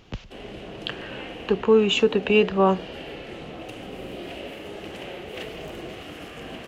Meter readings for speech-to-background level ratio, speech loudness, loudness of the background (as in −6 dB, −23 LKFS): 17.0 dB, −20.5 LKFS, −37.5 LKFS